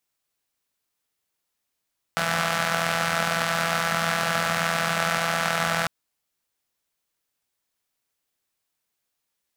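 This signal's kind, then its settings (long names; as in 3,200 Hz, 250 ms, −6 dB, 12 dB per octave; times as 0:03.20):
pulse-train model of a four-cylinder engine, steady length 3.70 s, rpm 5,000, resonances 190/710/1,300 Hz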